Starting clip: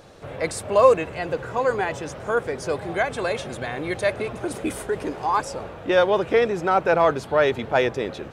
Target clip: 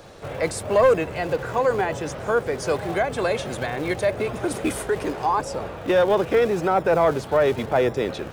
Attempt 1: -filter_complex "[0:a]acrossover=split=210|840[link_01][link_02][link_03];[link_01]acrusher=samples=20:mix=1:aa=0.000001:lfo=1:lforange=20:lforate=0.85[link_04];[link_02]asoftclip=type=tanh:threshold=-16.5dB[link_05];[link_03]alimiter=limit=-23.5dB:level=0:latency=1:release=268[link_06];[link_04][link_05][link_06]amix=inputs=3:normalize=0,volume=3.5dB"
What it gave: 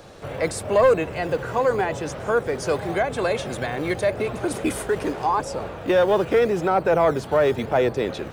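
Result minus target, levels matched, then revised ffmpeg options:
sample-and-hold swept by an LFO: distortion −8 dB
-filter_complex "[0:a]acrossover=split=210|840[link_01][link_02][link_03];[link_01]acrusher=samples=48:mix=1:aa=0.000001:lfo=1:lforange=48:lforate=0.85[link_04];[link_02]asoftclip=type=tanh:threshold=-16.5dB[link_05];[link_03]alimiter=limit=-23.5dB:level=0:latency=1:release=268[link_06];[link_04][link_05][link_06]amix=inputs=3:normalize=0,volume=3.5dB"

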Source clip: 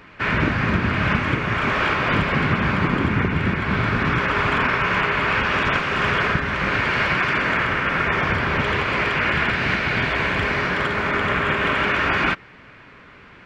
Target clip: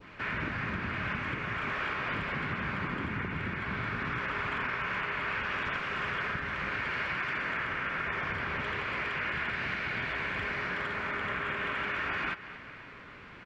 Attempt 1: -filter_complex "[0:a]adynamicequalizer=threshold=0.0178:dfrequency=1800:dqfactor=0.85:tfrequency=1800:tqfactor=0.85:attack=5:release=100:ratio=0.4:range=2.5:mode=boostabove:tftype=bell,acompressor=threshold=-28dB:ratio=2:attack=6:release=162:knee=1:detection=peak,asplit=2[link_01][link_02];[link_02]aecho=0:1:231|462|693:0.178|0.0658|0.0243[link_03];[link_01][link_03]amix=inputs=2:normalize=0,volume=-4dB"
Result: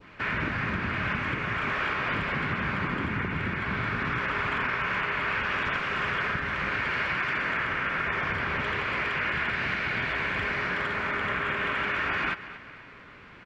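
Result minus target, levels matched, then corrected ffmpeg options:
downward compressor: peak gain reduction −4.5 dB
-filter_complex "[0:a]adynamicequalizer=threshold=0.0178:dfrequency=1800:dqfactor=0.85:tfrequency=1800:tqfactor=0.85:attack=5:release=100:ratio=0.4:range=2.5:mode=boostabove:tftype=bell,acompressor=threshold=-37.5dB:ratio=2:attack=6:release=162:knee=1:detection=peak,asplit=2[link_01][link_02];[link_02]aecho=0:1:231|462|693:0.178|0.0658|0.0243[link_03];[link_01][link_03]amix=inputs=2:normalize=0,volume=-4dB"

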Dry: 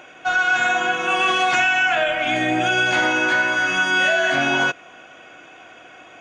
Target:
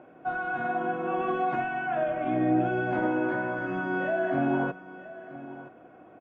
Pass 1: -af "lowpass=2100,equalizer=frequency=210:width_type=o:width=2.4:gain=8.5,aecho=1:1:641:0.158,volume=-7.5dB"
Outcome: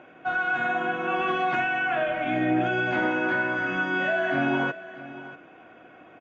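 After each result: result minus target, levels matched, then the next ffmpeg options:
echo 333 ms early; 2,000 Hz band +5.0 dB
-af "lowpass=2100,equalizer=frequency=210:width_type=o:width=2.4:gain=8.5,aecho=1:1:974:0.158,volume=-7.5dB"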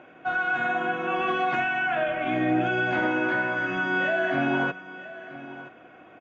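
2,000 Hz band +5.0 dB
-af "lowpass=930,equalizer=frequency=210:width_type=o:width=2.4:gain=8.5,aecho=1:1:974:0.158,volume=-7.5dB"

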